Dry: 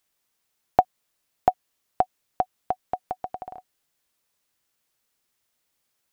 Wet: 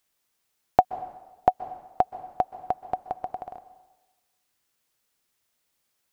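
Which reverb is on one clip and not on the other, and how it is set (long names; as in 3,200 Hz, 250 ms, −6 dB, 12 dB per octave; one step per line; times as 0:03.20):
dense smooth reverb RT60 1.1 s, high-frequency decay 0.9×, pre-delay 115 ms, DRR 14.5 dB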